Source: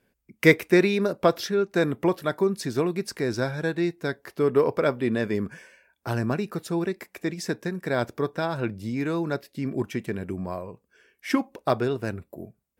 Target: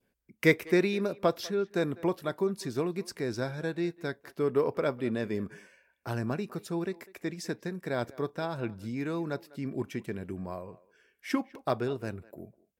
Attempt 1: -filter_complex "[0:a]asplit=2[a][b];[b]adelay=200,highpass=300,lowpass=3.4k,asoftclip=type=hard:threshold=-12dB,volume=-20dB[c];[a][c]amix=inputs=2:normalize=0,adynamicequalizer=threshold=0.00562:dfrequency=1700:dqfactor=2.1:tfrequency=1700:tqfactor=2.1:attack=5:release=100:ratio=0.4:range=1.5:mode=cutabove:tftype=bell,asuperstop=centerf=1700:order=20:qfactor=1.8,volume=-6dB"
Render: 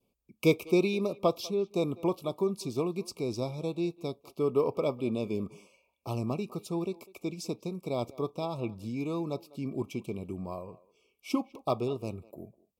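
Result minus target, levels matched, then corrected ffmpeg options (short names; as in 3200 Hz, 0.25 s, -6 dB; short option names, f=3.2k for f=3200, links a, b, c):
2000 Hz band -7.5 dB
-filter_complex "[0:a]asplit=2[a][b];[b]adelay=200,highpass=300,lowpass=3.4k,asoftclip=type=hard:threshold=-12dB,volume=-20dB[c];[a][c]amix=inputs=2:normalize=0,adynamicequalizer=threshold=0.00562:dfrequency=1700:dqfactor=2.1:tfrequency=1700:tqfactor=2.1:attack=5:release=100:ratio=0.4:range=1.5:mode=cutabove:tftype=bell,volume=-6dB"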